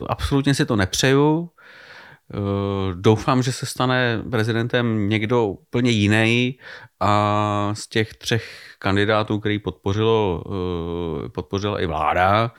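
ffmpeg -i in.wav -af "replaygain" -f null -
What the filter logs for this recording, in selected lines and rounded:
track_gain = +1.1 dB
track_peak = 0.593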